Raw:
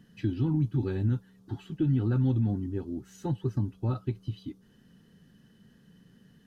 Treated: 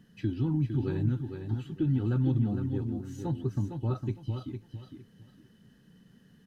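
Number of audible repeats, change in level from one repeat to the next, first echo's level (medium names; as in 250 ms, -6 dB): 3, -12.5 dB, -7.0 dB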